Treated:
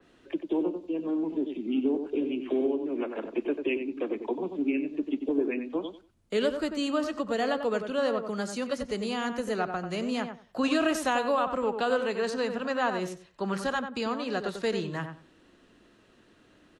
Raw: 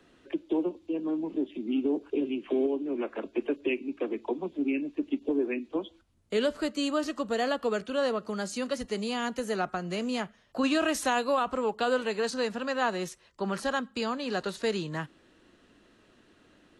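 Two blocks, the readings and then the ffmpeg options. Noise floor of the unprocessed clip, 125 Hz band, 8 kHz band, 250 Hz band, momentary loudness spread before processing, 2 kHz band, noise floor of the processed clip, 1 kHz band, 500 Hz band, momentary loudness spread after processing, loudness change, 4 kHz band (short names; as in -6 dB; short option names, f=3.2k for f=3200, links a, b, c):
-63 dBFS, +1.0 dB, -2.5 dB, +1.0 dB, 6 LU, 0.0 dB, -61 dBFS, +0.5 dB, +1.0 dB, 6 LU, +0.5 dB, -1.0 dB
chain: -filter_complex "[0:a]asplit=2[a][b];[b]adelay=93,lowpass=f=1.6k:p=1,volume=-6.5dB,asplit=2[c][d];[d]adelay=93,lowpass=f=1.6k:p=1,volume=0.2,asplit=2[e][f];[f]adelay=93,lowpass=f=1.6k:p=1,volume=0.2[g];[c][e][g]amix=inputs=3:normalize=0[h];[a][h]amix=inputs=2:normalize=0,adynamicequalizer=threshold=0.00631:dfrequency=3500:dqfactor=0.7:tfrequency=3500:tqfactor=0.7:attack=5:release=100:ratio=0.375:range=2.5:mode=cutabove:tftype=highshelf"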